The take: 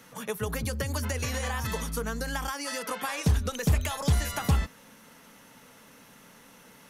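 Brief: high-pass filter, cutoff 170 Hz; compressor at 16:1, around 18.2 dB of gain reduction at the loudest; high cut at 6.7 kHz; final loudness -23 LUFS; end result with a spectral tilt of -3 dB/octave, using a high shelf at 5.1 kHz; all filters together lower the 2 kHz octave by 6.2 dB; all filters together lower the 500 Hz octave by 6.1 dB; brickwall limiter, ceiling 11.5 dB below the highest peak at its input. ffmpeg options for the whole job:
-af "highpass=170,lowpass=6700,equalizer=f=500:t=o:g=-6.5,equalizer=f=2000:t=o:g=-8.5,highshelf=f=5100:g=6.5,acompressor=threshold=0.00794:ratio=16,volume=26.6,alimiter=limit=0.237:level=0:latency=1"

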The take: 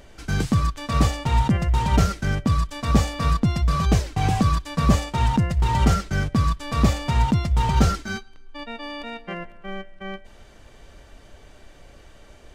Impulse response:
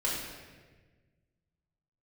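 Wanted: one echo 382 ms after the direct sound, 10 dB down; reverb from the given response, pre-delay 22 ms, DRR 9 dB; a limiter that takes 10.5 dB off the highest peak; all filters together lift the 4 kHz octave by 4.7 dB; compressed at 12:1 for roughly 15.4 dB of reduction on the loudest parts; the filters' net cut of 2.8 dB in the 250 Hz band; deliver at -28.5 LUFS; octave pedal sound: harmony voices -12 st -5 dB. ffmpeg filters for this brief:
-filter_complex "[0:a]equalizer=f=250:t=o:g=-4,equalizer=f=4000:t=o:g=6,acompressor=threshold=0.0355:ratio=12,alimiter=level_in=1.5:limit=0.0631:level=0:latency=1,volume=0.668,aecho=1:1:382:0.316,asplit=2[s0][s1];[1:a]atrim=start_sample=2205,adelay=22[s2];[s1][s2]afir=irnorm=-1:irlink=0,volume=0.15[s3];[s0][s3]amix=inputs=2:normalize=0,asplit=2[s4][s5];[s5]asetrate=22050,aresample=44100,atempo=2,volume=0.562[s6];[s4][s6]amix=inputs=2:normalize=0,volume=2.51"

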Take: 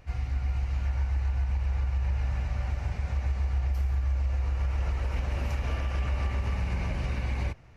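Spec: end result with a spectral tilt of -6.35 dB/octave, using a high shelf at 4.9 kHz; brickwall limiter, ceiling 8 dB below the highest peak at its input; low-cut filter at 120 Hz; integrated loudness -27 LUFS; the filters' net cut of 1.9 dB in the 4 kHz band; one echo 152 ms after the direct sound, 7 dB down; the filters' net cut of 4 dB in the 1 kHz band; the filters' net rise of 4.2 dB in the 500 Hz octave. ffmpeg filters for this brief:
-af "highpass=120,equalizer=f=500:t=o:g=7.5,equalizer=f=1000:t=o:g=-8.5,equalizer=f=4000:t=o:g=-5,highshelf=f=4900:g=5.5,alimiter=level_in=2.24:limit=0.0631:level=0:latency=1,volume=0.447,aecho=1:1:152:0.447,volume=3.98"

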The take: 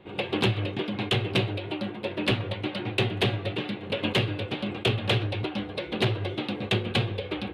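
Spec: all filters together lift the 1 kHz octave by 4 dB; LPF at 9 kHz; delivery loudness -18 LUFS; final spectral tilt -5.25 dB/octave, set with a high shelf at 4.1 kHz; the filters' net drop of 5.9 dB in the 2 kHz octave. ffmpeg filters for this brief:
-af "lowpass=9000,equalizer=f=1000:t=o:g=7.5,equalizer=f=2000:t=o:g=-8,highshelf=f=4100:g=-6.5,volume=3.55"

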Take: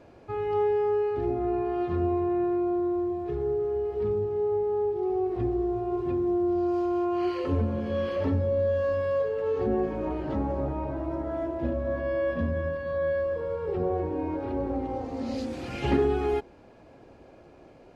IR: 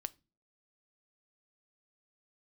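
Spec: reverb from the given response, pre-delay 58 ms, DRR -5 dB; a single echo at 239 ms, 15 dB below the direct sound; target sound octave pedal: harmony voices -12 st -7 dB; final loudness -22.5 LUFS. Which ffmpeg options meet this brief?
-filter_complex "[0:a]aecho=1:1:239:0.178,asplit=2[s0][s1];[1:a]atrim=start_sample=2205,adelay=58[s2];[s1][s2]afir=irnorm=-1:irlink=0,volume=2.37[s3];[s0][s3]amix=inputs=2:normalize=0,asplit=2[s4][s5];[s5]asetrate=22050,aresample=44100,atempo=2,volume=0.447[s6];[s4][s6]amix=inputs=2:normalize=0,volume=0.841"

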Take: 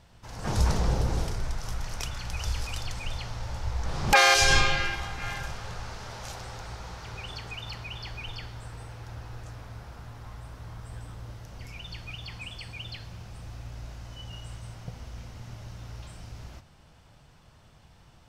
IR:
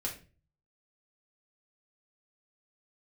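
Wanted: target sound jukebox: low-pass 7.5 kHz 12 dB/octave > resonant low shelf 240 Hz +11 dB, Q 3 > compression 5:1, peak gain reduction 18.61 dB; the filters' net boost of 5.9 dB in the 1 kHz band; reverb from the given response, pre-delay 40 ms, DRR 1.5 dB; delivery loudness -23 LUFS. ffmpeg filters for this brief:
-filter_complex "[0:a]equalizer=f=1000:t=o:g=9,asplit=2[s0][s1];[1:a]atrim=start_sample=2205,adelay=40[s2];[s1][s2]afir=irnorm=-1:irlink=0,volume=0.668[s3];[s0][s3]amix=inputs=2:normalize=0,lowpass=7500,lowshelf=f=240:t=q:w=3:g=11,acompressor=threshold=0.0708:ratio=5,volume=1.78"

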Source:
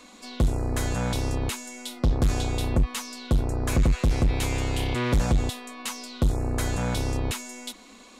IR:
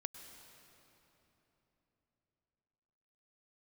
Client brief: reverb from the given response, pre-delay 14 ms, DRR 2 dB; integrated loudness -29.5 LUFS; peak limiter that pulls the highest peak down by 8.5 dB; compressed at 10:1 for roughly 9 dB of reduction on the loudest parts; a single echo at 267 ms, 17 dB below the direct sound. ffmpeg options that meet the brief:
-filter_complex "[0:a]acompressor=threshold=0.0447:ratio=10,alimiter=level_in=1.12:limit=0.0631:level=0:latency=1,volume=0.891,aecho=1:1:267:0.141,asplit=2[s0][s1];[1:a]atrim=start_sample=2205,adelay=14[s2];[s1][s2]afir=irnorm=-1:irlink=0,volume=1.12[s3];[s0][s3]amix=inputs=2:normalize=0,volume=1.33"

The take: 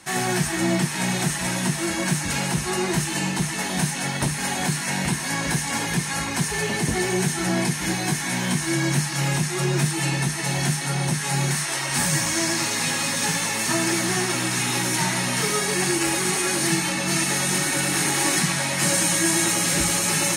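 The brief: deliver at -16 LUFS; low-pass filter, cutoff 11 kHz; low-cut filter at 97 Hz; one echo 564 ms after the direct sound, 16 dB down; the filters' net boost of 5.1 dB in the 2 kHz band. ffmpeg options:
-af "highpass=97,lowpass=11000,equalizer=f=2000:t=o:g=6,aecho=1:1:564:0.158,volume=1.68"

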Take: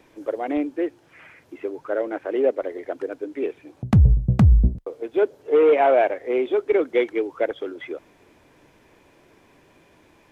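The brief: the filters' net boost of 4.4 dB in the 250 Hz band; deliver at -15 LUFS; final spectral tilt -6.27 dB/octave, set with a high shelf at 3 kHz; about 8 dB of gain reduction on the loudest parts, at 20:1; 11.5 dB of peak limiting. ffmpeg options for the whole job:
-af "equalizer=f=250:t=o:g=6.5,highshelf=f=3000:g=-7.5,acompressor=threshold=0.158:ratio=20,volume=4.47,alimiter=limit=0.562:level=0:latency=1"

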